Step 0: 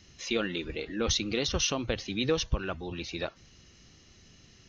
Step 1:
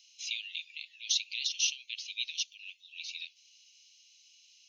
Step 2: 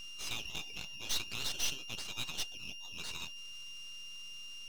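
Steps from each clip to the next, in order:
steep high-pass 2.4 kHz 72 dB/octave
single-diode clipper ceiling -29.5 dBFS; whistle 2.8 kHz -44 dBFS; half-wave rectifier; trim +3.5 dB

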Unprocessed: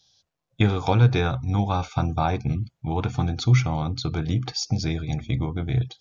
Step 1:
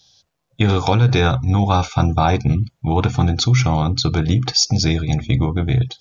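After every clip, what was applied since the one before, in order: dynamic bell 5.6 kHz, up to +5 dB, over -44 dBFS, Q 0.97; in parallel at 0 dB: compressor with a negative ratio -22 dBFS, ratio -0.5; on the sum: trim +1.5 dB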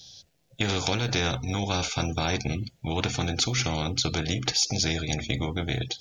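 peaking EQ 1.1 kHz -14.5 dB 0.89 oct; spectrum-flattening compressor 2:1; trim -4 dB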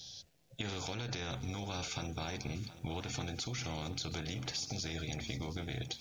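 peak limiter -18 dBFS, peak gain reduction 10 dB; compression 6:1, threshold -35 dBFS, peak gain reduction 10.5 dB; bit-crushed delay 722 ms, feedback 55%, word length 9-bit, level -14 dB; trim -1.5 dB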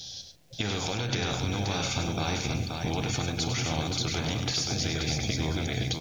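multi-tap echo 101/143/528 ms -7.5/-19.5/-4.5 dB; trim +8.5 dB

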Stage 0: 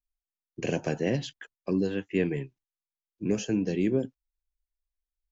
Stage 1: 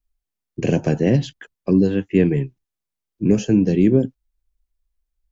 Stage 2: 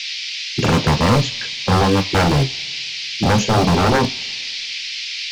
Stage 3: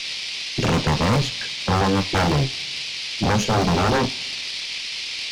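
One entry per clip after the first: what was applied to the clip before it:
bass shelf 380 Hz +11 dB; trim +4 dB
band noise 2.1–5.3 kHz -35 dBFS; wavefolder -17 dBFS; two-slope reverb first 0.2 s, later 1.9 s, from -28 dB, DRR 6 dB; trim +7 dB
valve stage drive 14 dB, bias 0.55

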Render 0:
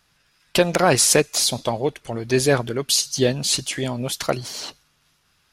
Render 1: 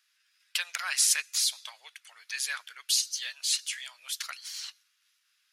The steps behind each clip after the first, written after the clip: high-pass 1.5 kHz 24 dB/octave; trim -6.5 dB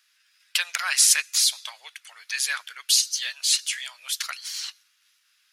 peaking EQ 300 Hz -2.5 dB 1.5 oct; trim +6.5 dB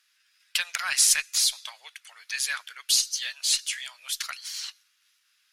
Chebyshev shaper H 6 -38 dB, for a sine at -4 dBFS; trim -2.5 dB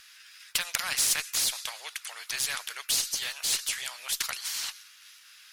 spectrum-flattening compressor 2:1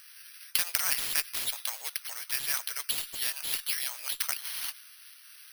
careless resampling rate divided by 6×, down filtered, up zero stuff; trim -2.5 dB

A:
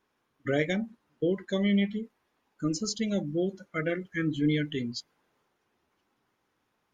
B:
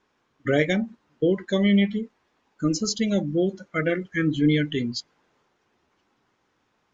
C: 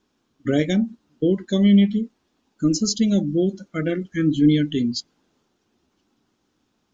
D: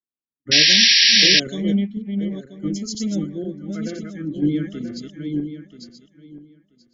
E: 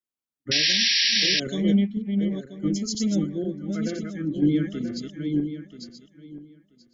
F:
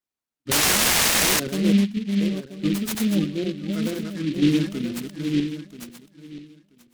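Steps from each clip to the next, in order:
steep low-pass 7.7 kHz; trim +6 dB
graphic EQ 125/250/500/1000/2000 Hz -4/+4/-6/-7/-10 dB; trim +4.5 dB
backward echo that repeats 491 ms, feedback 57%, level -2.5 dB; painted sound noise, 0.51–1.40 s, 1.6–5.8 kHz -11 dBFS; three bands expanded up and down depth 70%; trim -7.5 dB
peak limiter -12 dBFS, peak gain reduction 10.5 dB
delay time shaken by noise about 2.8 kHz, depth 0.081 ms; trim +2 dB

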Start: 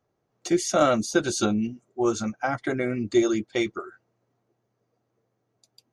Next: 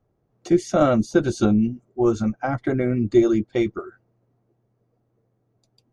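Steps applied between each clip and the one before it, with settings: tilt EQ -3 dB/octave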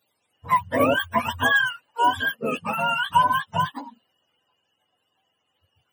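spectrum inverted on a logarithmic axis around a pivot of 590 Hz; treble shelf 5.1 kHz +11.5 dB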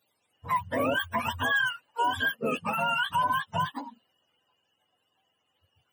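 peak limiter -16.5 dBFS, peak gain reduction 9.5 dB; trim -2 dB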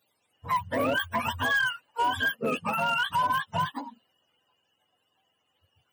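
hard clipper -21.5 dBFS, distortion -21 dB; trim +1 dB

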